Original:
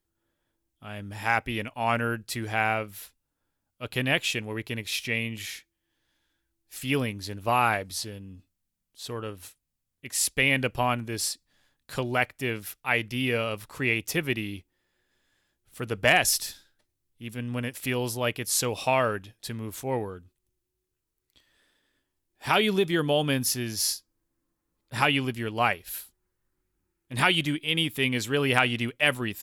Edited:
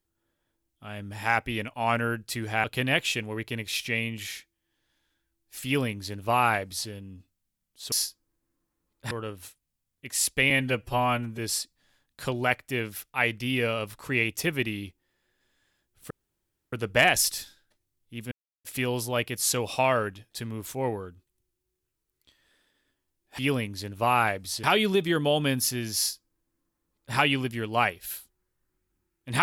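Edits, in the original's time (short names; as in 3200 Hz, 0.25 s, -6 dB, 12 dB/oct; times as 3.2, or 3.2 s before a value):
2.64–3.83 cut
6.84–8.09 copy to 22.47
10.5–11.09 stretch 1.5×
15.81 insert room tone 0.62 s
17.4–17.73 mute
23.8–24.99 copy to 9.11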